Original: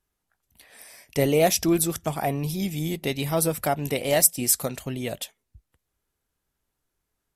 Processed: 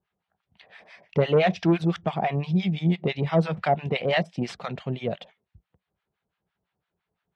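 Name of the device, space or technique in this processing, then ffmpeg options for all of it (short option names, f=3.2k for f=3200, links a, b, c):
guitar amplifier with harmonic tremolo: -filter_complex "[0:a]acrossover=split=840[a][b];[a]aeval=exprs='val(0)*(1-1/2+1/2*cos(2*PI*5.9*n/s))':c=same[c];[b]aeval=exprs='val(0)*(1-1/2-1/2*cos(2*PI*5.9*n/s))':c=same[d];[c][d]amix=inputs=2:normalize=0,asoftclip=type=tanh:threshold=-18dB,highpass=100,equalizer=f=180:t=q:w=4:g=8,equalizer=f=280:t=q:w=4:g=-9,equalizer=f=740:t=q:w=4:g=3,lowpass=f=3.5k:w=0.5412,lowpass=f=3.5k:w=1.3066,volume=6.5dB"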